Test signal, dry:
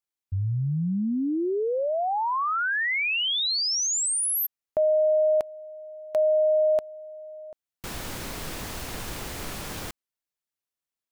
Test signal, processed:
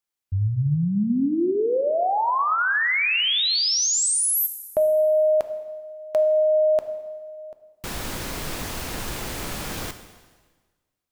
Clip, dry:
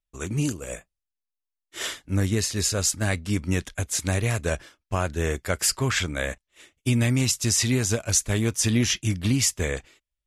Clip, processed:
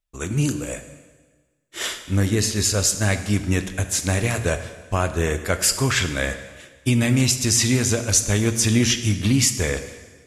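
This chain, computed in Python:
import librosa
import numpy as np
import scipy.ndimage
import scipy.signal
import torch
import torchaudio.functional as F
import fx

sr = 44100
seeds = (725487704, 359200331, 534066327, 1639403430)

y = fx.rev_plate(x, sr, seeds[0], rt60_s=1.4, hf_ratio=0.95, predelay_ms=0, drr_db=8.5)
y = y * 10.0 ** (3.5 / 20.0)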